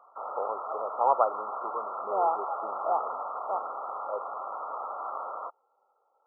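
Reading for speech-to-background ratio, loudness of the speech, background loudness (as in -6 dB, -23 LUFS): 4.5 dB, -31.5 LUFS, -36.0 LUFS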